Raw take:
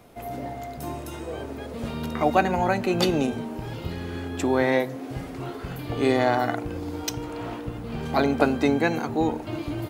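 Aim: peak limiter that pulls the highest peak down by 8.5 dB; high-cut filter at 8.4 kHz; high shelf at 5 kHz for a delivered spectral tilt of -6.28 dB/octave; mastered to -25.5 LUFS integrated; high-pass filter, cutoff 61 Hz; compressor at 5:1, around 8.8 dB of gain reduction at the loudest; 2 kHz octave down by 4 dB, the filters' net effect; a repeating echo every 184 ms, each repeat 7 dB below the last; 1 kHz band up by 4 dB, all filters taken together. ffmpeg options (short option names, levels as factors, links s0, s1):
-af "highpass=61,lowpass=8400,equalizer=f=1000:t=o:g=7.5,equalizer=f=2000:t=o:g=-8,highshelf=f=5000:g=-4.5,acompressor=threshold=0.0794:ratio=5,alimiter=limit=0.112:level=0:latency=1,aecho=1:1:184|368|552|736|920:0.447|0.201|0.0905|0.0407|0.0183,volume=1.78"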